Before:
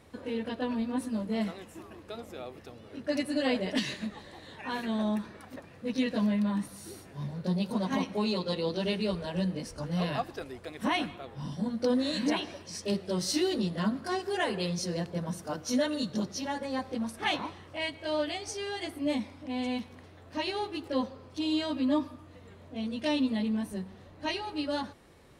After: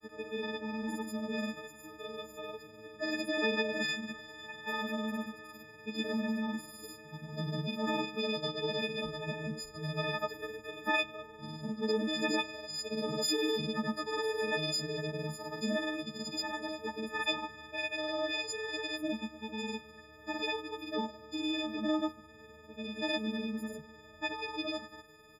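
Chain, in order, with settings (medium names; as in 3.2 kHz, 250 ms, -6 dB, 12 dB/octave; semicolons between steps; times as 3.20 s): partials quantised in pitch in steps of 6 st; granulator 100 ms, pitch spread up and down by 0 st; fifteen-band graphic EQ 400 Hz +6 dB, 1.6 kHz +5 dB, 10 kHz -11 dB; trim -6.5 dB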